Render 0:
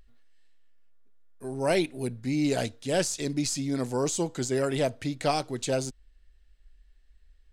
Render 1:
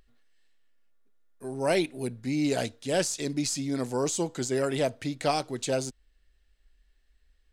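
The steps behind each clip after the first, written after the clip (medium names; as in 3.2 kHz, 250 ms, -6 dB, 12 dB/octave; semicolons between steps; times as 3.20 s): bass shelf 84 Hz -8.5 dB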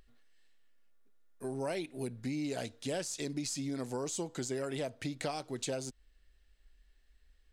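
compression 6:1, threshold -34 dBFS, peak gain reduction 13 dB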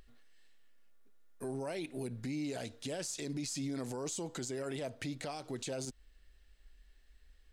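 peak limiter -34 dBFS, peak gain reduction 10.5 dB; trim +3.5 dB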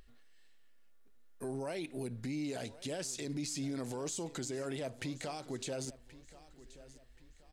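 feedback delay 1078 ms, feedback 37%, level -18 dB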